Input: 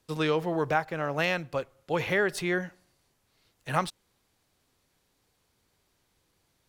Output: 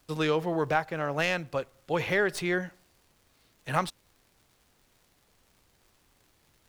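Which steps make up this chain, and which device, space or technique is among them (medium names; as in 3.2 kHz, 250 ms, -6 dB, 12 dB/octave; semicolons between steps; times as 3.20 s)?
record under a worn stylus (tracing distortion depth 0.028 ms; crackle 120 per s -51 dBFS; pink noise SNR 36 dB)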